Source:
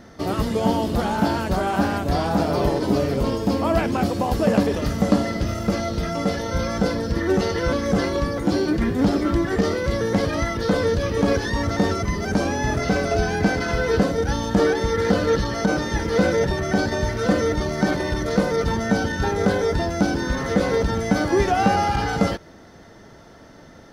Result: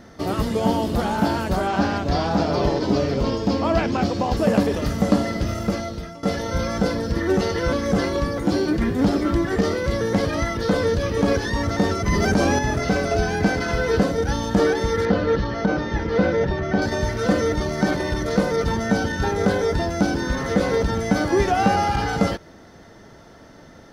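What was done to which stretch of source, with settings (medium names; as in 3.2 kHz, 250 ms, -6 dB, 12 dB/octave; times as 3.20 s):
1.67–4.37 s: resonant high shelf 7.6 kHz -12 dB, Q 1.5
5.62–6.23 s: fade out, to -18.5 dB
12.06–12.59 s: level flattener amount 70%
15.05–16.82 s: distance through air 180 m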